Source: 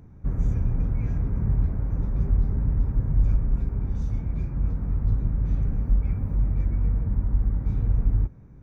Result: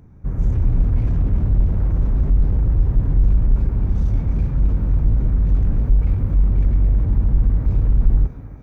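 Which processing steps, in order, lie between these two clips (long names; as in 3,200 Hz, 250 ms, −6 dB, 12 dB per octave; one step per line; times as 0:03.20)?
automatic gain control gain up to 8 dB
on a send: feedback echo with a high-pass in the loop 301 ms, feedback 72%, high-pass 180 Hz, level −14 dB
on the sum: slew-rate limiting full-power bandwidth 12 Hz
level +1.5 dB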